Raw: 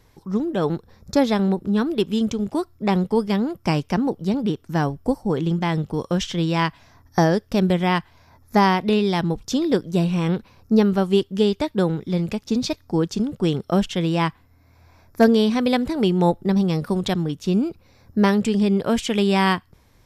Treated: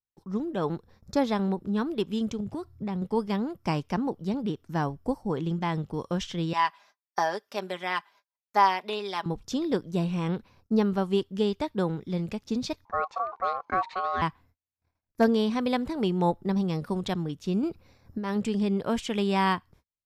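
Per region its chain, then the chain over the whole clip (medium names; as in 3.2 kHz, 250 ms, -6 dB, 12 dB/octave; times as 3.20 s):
2.40–3.02 s: peaking EQ 100 Hz +14 dB 1.8 oct + compression 4:1, threshold -23 dBFS
6.53–9.26 s: high-pass 620 Hz + comb 5 ms, depth 59%
12.85–14.22 s: low-pass 3 kHz + ring modulator 930 Hz
17.63–18.36 s: band-stop 6.3 kHz, Q 20 + compressor with a negative ratio -22 dBFS
whole clip: treble shelf 7.6 kHz -4 dB; gate -48 dBFS, range -41 dB; dynamic bell 1 kHz, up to +5 dB, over -36 dBFS, Q 2.2; trim -7.5 dB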